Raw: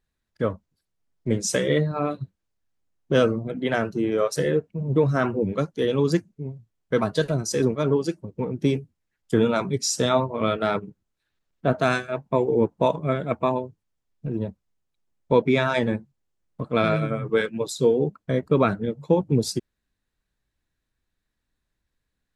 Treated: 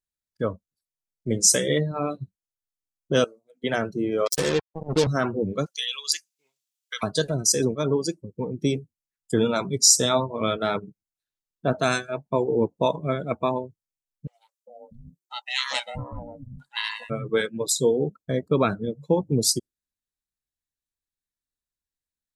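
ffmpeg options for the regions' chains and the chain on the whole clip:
-filter_complex "[0:a]asettb=1/sr,asplit=3[s0][s1][s2];[s0]atrim=end=3.244[s3];[s1]atrim=start=3.24:end=3.64,asetpts=PTS-STARTPTS,afade=t=in:d=0.004:c=qsin,afade=t=out:st=0.396:d=0.004:c=qsin,highpass=880,equalizer=f=1500:w=0.38:g=-14.5[s4];[s2]atrim=start=3.636[s5];[s3][s4]acrossfade=d=0.004:c1=hsin:c2=qsin[s6];[s6][s5]acrossfade=d=0.004:c1=qsin:c2=hsin,asettb=1/sr,asplit=3[s7][s8][s9];[s7]atrim=end=4.264[s10];[s8]atrim=start=4.26:end=5.07,asetpts=PTS-STARTPTS,afade=t=in:d=0.004:c=qsin,afade=t=out:st=0.806:d=0.004:c=qsin,highpass=120,acrusher=bits=3:mix=0:aa=0.5[s11];[s9]atrim=start=5.066[s12];[s10][s11]acrossfade=d=0.004:c1=hsin:c2=qsin[s13];[s13][s12]acrossfade=d=0.004:c1=qsin:c2=hsin,asettb=1/sr,asplit=3[s14][s15][s16];[s14]atrim=end=5.664[s17];[s15]atrim=start=5.66:end=7.03,asetpts=PTS-STARTPTS,afade=t=in:d=0.004:c=qsin,afade=t=out:st=1.366:d=0.004:c=qsin,highshelf=f=2000:t=q:w=1.5:g=11.5,acompressor=threshold=0.0562:ratio=5:attack=3.2:release=140:knee=1:detection=peak,highpass=f=1300:t=q:w=2.4[s18];[s16]atrim=start=7.026[s19];[s17][s18]acrossfade=d=0.004:c1=hsin:c2=qsin[s20];[s20][s19]acrossfade=d=0.004:c1=qsin:c2=hsin,asettb=1/sr,asplit=3[s21][s22][s23];[s21]atrim=end=14.274[s24];[s22]atrim=start=14.27:end=17.1,asetpts=PTS-STARTPTS,afade=t=in:d=0.004:c=qsin,afade=t=out:st=2.826:d=0.004:c=qsin,tiltshelf=f=1500:g=-8.5,aeval=exprs='val(0)*sin(2*PI*360*n/s)':c=same,acrossover=split=280|930[s25][s26][s27];[s26]adelay=400[s28];[s25]adelay=640[s29];[s29][s28][s27]amix=inputs=3:normalize=0,atrim=end_sample=124803[s30];[s23]atrim=start=17.096[s31];[s24][s30]acrossfade=d=0.004:c1=hsin:c2=qsin[s32];[s32][s31]acrossfade=d=0.004:c1=qsin:c2=hsin,bass=f=250:g=-1,treble=f=4000:g=14,afftdn=nr=17:nf=-35,volume=0.841"

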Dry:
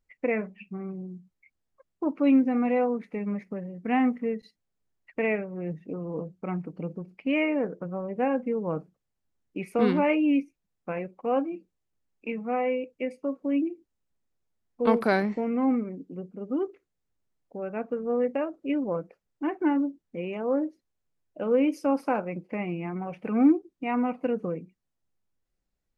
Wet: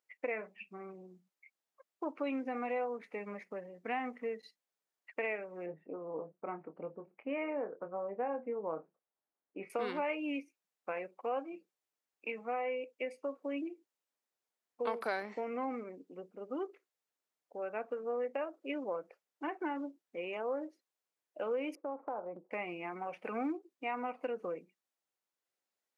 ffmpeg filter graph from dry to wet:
-filter_complex "[0:a]asettb=1/sr,asplit=3[s0][s1][s2];[s0]atrim=end=5.664[s3];[s1]atrim=start=5.66:end=9.7,asetpts=PTS-STARTPTS,afade=t=in:d=0.004:c=qsin,afade=t=out:st=4.036:d=0.004:c=qsin,lowpass=1400,asplit=2[s4][s5];[s5]adelay=25,volume=0.355[s6];[s4][s6]amix=inputs=2:normalize=0,atrim=end_sample=178164[s7];[s2]atrim=start=9.696[s8];[s3][s7]acrossfade=d=0.004:c1=hsin:c2=qsin[s9];[s9][s8]acrossfade=d=0.004:c1=qsin:c2=hsin,asettb=1/sr,asplit=3[s10][s11][s12];[s10]atrim=end=21.754[s13];[s11]atrim=start=21.75:end=22.51,asetpts=PTS-STARTPTS,afade=t=in:d=0.004:c=qsin,afade=t=out:st=0.756:d=0.004:c=qsin,lowpass=f=1100:w=0.5412,lowpass=f=1100:w=1.3066,agate=range=0.0224:threshold=0.00178:ratio=3:release=100:detection=peak,acompressor=threshold=0.0282:ratio=3:attack=3.2:release=140:knee=1:detection=peak[s14];[s12]atrim=start=22.506[s15];[s13][s14]acrossfade=d=0.004:c1=hsin:c2=qsin[s16];[s16][s15]acrossfade=d=0.004:c1=qsin:c2=hsin,highpass=530,acompressor=threshold=0.0224:ratio=3,volume=0.891"

